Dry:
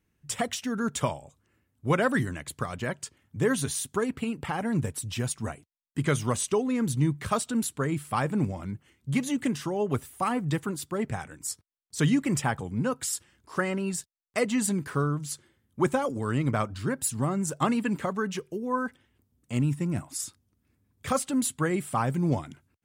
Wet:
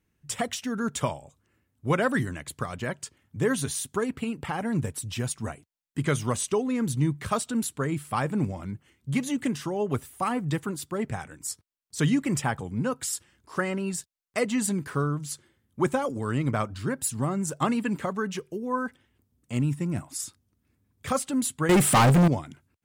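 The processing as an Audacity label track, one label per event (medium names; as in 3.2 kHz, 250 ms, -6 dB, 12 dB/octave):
21.690000	22.280000	waveshaping leveller passes 5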